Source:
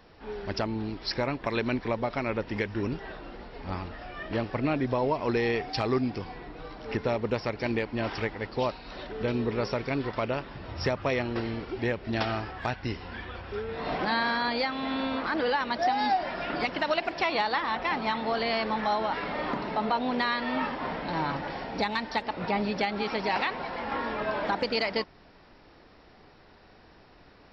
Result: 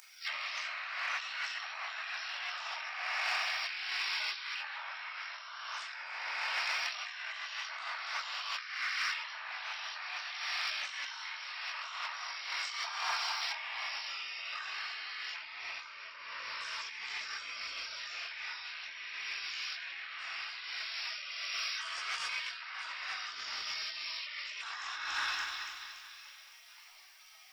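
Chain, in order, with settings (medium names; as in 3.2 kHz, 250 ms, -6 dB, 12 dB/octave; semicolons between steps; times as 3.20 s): octave divider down 2 oct, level -3 dB; AM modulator 80 Hz, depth 100%; in parallel at 0 dB: peak limiter -24 dBFS, peak gain reduction 9 dB; on the sum: high-pass 78 Hz 24 dB/octave; spectral gate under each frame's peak -30 dB weak; two-band feedback delay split 2.2 kHz, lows 214 ms, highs 285 ms, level -10 dB; simulated room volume 770 m³, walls mixed, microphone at 2.7 m; compressor with a negative ratio -58 dBFS, ratio -1; high-order bell 1.3 kHz +13.5 dB 2.3 oct; saturation -31.5 dBFS, distortion -28 dB; tone controls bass -13 dB, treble +8 dB; trim +8 dB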